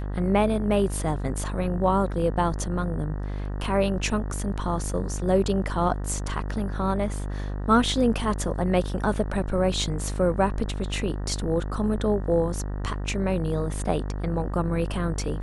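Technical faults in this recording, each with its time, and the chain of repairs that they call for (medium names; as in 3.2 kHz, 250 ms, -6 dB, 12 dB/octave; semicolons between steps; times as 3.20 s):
buzz 50 Hz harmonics 38 -30 dBFS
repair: de-hum 50 Hz, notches 38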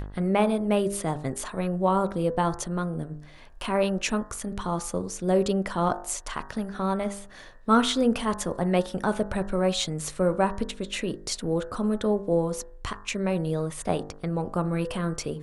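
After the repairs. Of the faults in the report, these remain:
nothing left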